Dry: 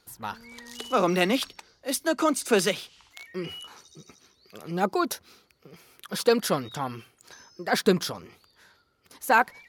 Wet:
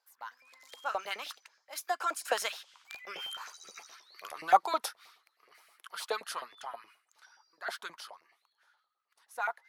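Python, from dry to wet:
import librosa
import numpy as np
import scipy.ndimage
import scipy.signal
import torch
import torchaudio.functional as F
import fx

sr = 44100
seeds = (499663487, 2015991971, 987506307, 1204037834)

y = fx.doppler_pass(x, sr, speed_mps=29, closest_m=12.0, pass_at_s=3.85)
y = fx.filter_lfo_highpass(y, sr, shape='saw_up', hz=9.5, low_hz=640.0, high_hz=1900.0, q=2.9)
y = y * librosa.db_to_amplitude(3.5)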